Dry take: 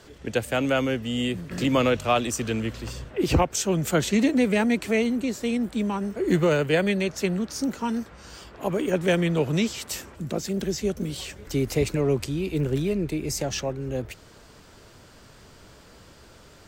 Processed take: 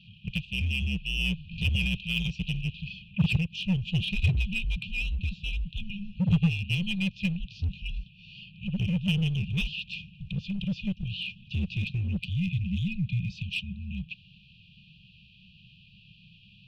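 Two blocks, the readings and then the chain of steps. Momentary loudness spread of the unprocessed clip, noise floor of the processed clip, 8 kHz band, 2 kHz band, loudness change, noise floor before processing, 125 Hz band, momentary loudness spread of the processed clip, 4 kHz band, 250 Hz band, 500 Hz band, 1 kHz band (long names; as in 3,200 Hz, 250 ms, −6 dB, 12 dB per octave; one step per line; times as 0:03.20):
11 LU, −56 dBFS, below −20 dB, −2.5 dB, −5.0 dB, −51 dBFS, +1.0 dB, 11 LU, 0.0 dB, −7.0 dB, −28.5 dB, below −25 dB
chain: single-sideband voice off tune −190 Hz 330–3,300 Hz
linear-phase brick-wall band-stop 200–2,400 Hz
in parallel at −10.5 dB: wave folding −34 dBFS
on the sum: time-frequency box erased 0:12.18–0:13.93, 310–2,000 Hz
level +5 dB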